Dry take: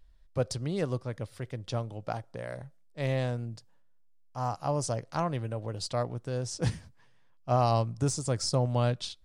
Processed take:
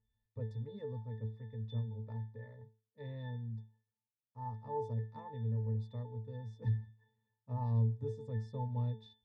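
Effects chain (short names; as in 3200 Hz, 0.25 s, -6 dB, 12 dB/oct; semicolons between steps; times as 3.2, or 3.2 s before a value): octave resonator A, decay 0.35 s; gain +4.5 dB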